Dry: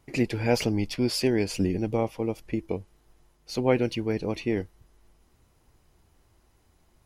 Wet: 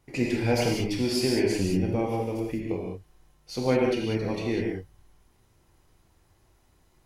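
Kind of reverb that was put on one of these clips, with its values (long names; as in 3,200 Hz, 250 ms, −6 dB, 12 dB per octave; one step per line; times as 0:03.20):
reverb whose tail is shaped and stops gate 220 ms flat, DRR −2.5 dB
level −3.5 dB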